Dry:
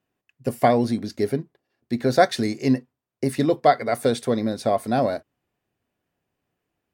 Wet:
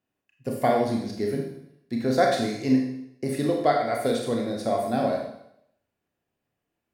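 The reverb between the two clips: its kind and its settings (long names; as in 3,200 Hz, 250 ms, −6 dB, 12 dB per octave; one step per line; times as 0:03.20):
four-comb reverb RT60 0.75 s, combs from 27 ms, DRR 0 dB
level −6 dB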